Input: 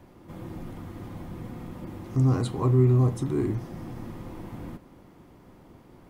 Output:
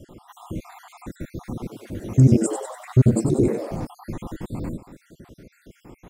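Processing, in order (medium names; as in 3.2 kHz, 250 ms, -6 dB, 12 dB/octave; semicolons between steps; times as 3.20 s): random holes in the spectrogram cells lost 63%; peaking EQ 7.6 kHz +7.5 dB 0.69 oct; 1.50–3.87 s: frequency-shifting echo 95 ms, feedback 52%, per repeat +100 Hz, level -8 dB; trim +9 dB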